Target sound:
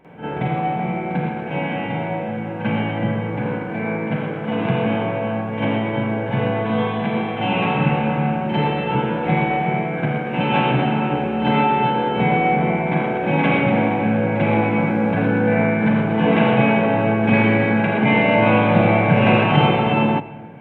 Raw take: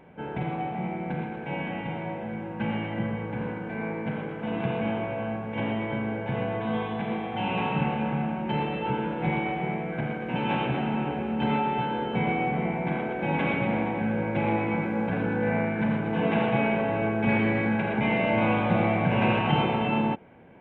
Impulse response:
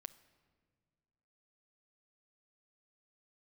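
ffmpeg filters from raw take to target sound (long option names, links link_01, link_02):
-filter_complex "[0:a]asplit=2[link_01][link_02];[link_02]highpass=94[link_03];[1:a]atrim=start_sample=2205,adelay=47[link_04];[link_03][link_04]afir=irnorm=-1:irlink=0,volume=15.5dB[link_05];[link_01][link_05]amix=inputs=2:normalize=0,volume=-1.5dB"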